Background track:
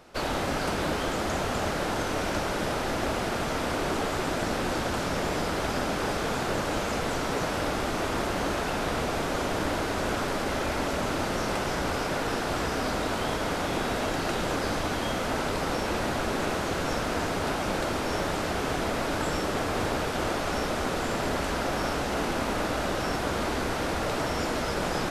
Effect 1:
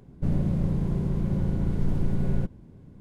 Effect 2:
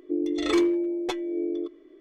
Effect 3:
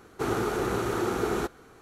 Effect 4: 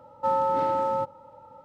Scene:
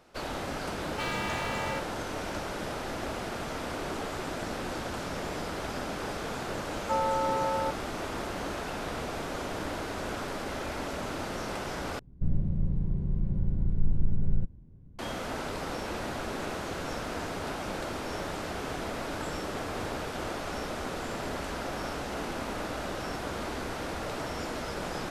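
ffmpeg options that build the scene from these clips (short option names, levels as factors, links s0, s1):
-filter_complex "[4:a]asplit=2[s0][s1];[0:a]volume=0.473[s2];[s0]aeval=exprs='0.0473*(abs(mod(val(0)/0.0473+3,4)-2)-1)':c=same[s3];[1:a]aemphasis=mode=reproduction:type=bsi[s4];[s2]asplit=2[s5][s6];[s5]atrim=end=11.994[s7];[s4]atrim=end=3,asetpts=PTS-STARTPTS,volume=0.211[s8];[s6]atrim=start=14.986[s9];[s3]atrim=end=1.64,asetpts=PTS-STARTPTS,volume=0.708,afade=t=in:d=0.004:c=hsin,afade=t=out:st=1.636:d=0.004:c=hsin,adelay=750[s10];[s1]atrim=end=1.64,asetpts=PTS-STARTPTS,volume=0.596,afade=t=in:d=0.004:c=hsin,afade=t=out:st=1.636:d=0.004:c=hsin,adelay=293706S[s11];[s7][s8]acrossfade=d=0.004:c1=hsin:c2=hsin[s12];[s12][s9]acrossfade=d=0.004:c1=hsin:c2=hsin[s13];[s13][s10][s11]amix=inputs=3:normalize=0"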